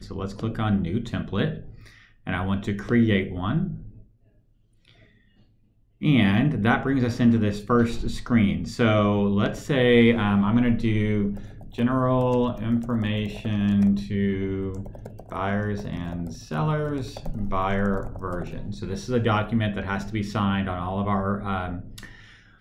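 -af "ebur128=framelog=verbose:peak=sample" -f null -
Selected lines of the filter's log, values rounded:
Integrated loudness:
  I:         -24.3 LUFS
  Threshold: -35.0 LUFS
Loudness range:
  LRA:         6.9 LU
  Threshold: -44.7 LUFS
  LRA low:   -28.4 LUFS
  LRA high:  -21.5 LUFS
Sample peak:
  Peak:       -6.2 dBFS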